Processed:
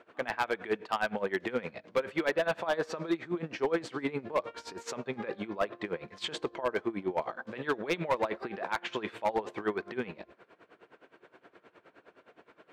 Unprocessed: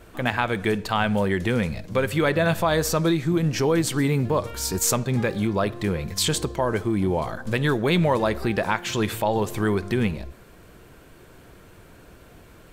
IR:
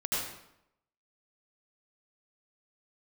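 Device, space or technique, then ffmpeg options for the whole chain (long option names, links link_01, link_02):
helicopter radio: -af "highpass=370,lowpass=2600,aeval=exprs='val(0)*pow(10,-19*(0.5-0.5*cos(2*PI*9.6*n/s))/20)':channel_layout=same,asoftclip=type=hard:threshold=-21.5dB"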